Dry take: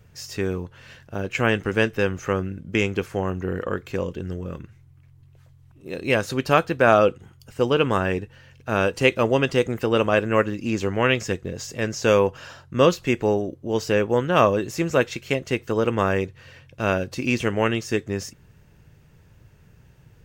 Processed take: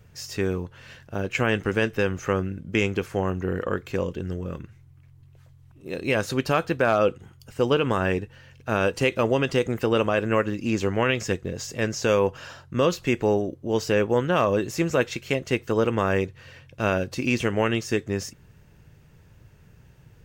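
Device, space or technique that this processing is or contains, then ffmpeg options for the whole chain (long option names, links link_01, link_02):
clipper into limiter: -af "asoftclip=type=hard:threshold=-5.5dB,alimiter=limit=-11dB:level=0:latency=1:release=71"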